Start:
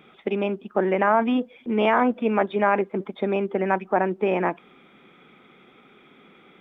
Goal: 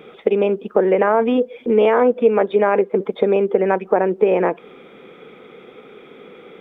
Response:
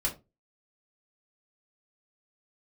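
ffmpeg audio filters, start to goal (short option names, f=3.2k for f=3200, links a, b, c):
-af "equalizer=f=470:t=o:w=0.5:g=14.5,acompressor=threshold=-23dB:ratio=2,volume=6.5dB"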